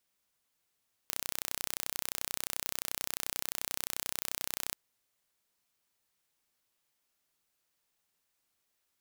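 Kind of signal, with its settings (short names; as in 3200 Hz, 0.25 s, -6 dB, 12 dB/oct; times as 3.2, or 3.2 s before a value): pulse train 31.4/s, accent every 0, -7 dBFS 3.65 s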